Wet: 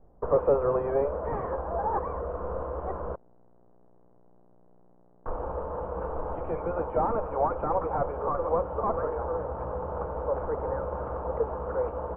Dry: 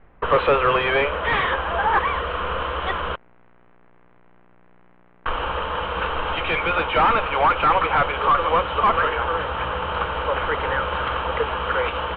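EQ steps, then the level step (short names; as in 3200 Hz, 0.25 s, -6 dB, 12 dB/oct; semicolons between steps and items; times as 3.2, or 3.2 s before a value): ladder low-pass 900 Hz, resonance 25%; air absorption 130 m; +1.0 dB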